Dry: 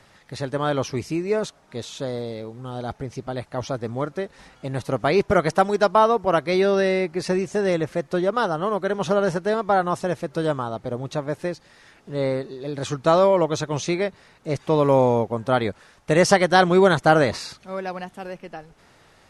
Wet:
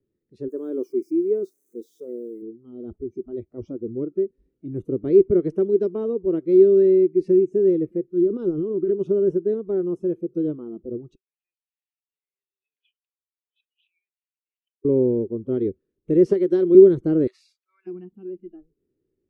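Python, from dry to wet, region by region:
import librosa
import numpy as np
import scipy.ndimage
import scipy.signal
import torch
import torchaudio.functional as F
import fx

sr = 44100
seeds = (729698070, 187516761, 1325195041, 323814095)

y = fx.chain(x, sr, fx.crossing_spikes(level_db=-27.5),
    fx.highpass(hz=280.0, slope=12),
    fx.peak_eq(hz=3000.0, db=-10.0, octaves=0.63), at=(0.48, 2.42))
y = fx.chain(y, sr, fx.transient(attack_db=-9, sustain_db=8),
    fx.peak_eq(hz=620.0, db=-4.5, octaves=0.37), at=(8.05, 8.91))
y = fx.chain(y, sr, fx.over_compress(threshold_db=-29.0, ratio=-1.0),
    fx.ladder_highpass(hz=2500.0, resonance_pct=65),
    fx.air_absorb(metres=370.0), at=(11.15, 14.85))
y = fx.chain(y, sr, fx.highpass(hz=360.0, slope=6),
    fx.band_squash(depth_pct=100), at=(16.26, 16.75))
y = fx.chain(y, sr, fx.highpass(hz=1200.0, slope=24),
    fx.high_shelf(hz=2700.0, db=3.5), at=(17.27, 17.87))
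y = fx.noise_reduce_blind(y, sr, reduce_db=18)
y = fx.curve_eq(y, sr, hz=(190.0, 380.0, 740.0, 2500.0, 6900.0), db=(0, 13, -26, -22, -27))
y = F.gain(torch.from_numpy(y), -4.0).numpy()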